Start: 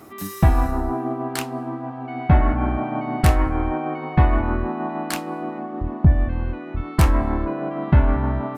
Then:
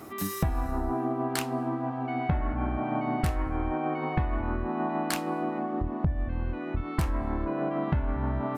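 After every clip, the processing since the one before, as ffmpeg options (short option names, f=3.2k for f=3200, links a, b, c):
-af "acompressor=threshold=-25dB:ratio=6"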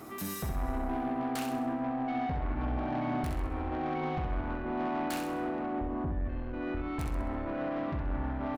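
-filter_complex "[0:a]asoftclip=type=tanh:threshold=-29.5dB,asplit=2[a][b];[b]aecho=0:1:65|130|195|260|325:0.562|0.247|0.109|0.0479|0.0211[c];[a][c]amix=inputs=2:normalize=0,volume=-2dB"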